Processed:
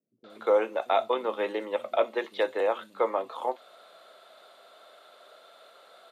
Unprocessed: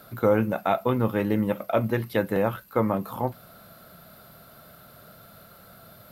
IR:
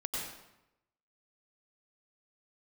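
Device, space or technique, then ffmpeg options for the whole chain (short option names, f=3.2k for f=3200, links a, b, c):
phone speaker on a table: -filter_complex "[0:a]highpass=f=400:w=0.5412,highpass=f=400:w=1.3066,equalizer=f=1.5k:t=q:w=4:g=-5,equalizer=f=3.5k:t=q:w=4:g=7,equalizer=f=5.2k:t=q:w=4:g=-6,lowpass=f=7.8k:w=0.5412,lowpass=f=7.8k:w=1.3066,acrossover=split=190|5600[a][b][c];[b]adelay=240[d];[c]adelay=300[e];[a][d][e]amix=inputs=3:normalize=0"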